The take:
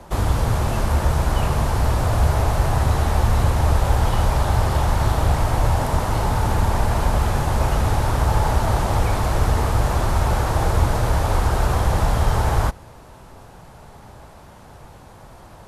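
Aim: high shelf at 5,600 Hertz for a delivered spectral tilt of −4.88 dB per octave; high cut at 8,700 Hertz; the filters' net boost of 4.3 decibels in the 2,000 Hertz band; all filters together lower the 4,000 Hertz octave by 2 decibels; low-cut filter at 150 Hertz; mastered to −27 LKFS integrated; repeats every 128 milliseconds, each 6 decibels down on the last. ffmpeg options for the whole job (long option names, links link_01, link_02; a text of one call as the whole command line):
ffmpeg -i in.wav -af "highpass=150,lowpass=8700,equalizer=frequency=2000:width_type=o:gain=6.5,equalizer=frequency=4000:width_type=o:gain=-7,highshelf=frequency=5600:gain=5.5,aecho=1:1:128|256|384|512|640|768:0.501|0.251|0.125|0.0626|0.0313|0.0157,volume=-4.5dB" out.wav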